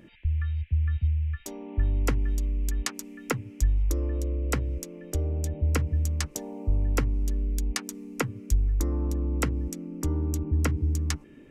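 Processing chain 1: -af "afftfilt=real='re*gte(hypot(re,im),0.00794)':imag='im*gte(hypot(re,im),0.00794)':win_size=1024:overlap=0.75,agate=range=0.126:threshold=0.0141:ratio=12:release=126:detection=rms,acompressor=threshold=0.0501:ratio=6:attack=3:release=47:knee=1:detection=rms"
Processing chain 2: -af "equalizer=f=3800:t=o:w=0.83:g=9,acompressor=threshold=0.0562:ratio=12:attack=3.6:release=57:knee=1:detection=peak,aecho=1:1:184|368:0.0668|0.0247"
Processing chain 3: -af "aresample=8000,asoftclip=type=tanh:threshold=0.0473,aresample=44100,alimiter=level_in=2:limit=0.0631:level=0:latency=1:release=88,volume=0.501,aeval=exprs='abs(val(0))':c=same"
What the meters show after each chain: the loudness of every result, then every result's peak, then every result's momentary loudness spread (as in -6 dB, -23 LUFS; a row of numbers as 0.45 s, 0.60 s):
-33.0 LUFS, -31.5 LUFS, -43.5 LUFS; -15.0 dBFS, -10.0 dBFS, -30.0 dBFS; 6 LU, 5 LU, 4 LU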